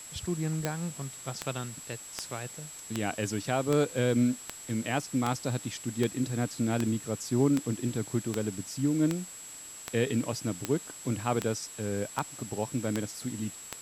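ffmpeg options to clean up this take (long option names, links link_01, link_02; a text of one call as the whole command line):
ffmpeg -i in.wav -af "adeclick=threshold=4,bandreject=frequency=7700:width=30,afftdn=noise_reduction=30:noise_floor=-45" out.wav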